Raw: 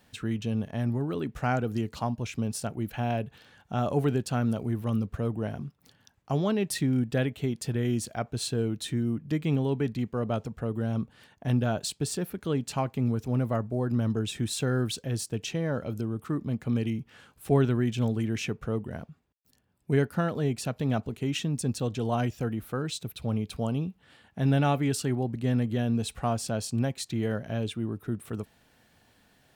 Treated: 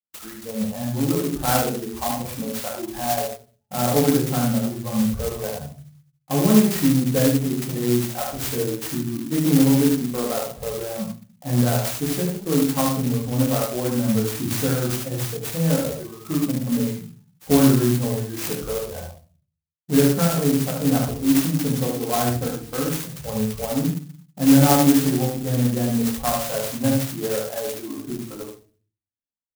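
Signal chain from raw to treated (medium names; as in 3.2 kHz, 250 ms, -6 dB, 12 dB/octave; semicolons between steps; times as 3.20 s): spectral noise reduction 19 dB; expander -53 dBFS; on a send: delay 74 ms -4 dB; on the sum: simulated room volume 200 m³, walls furnished, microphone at 2.1 m; sampling jitter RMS 0.12 ms; trim +2.5 dB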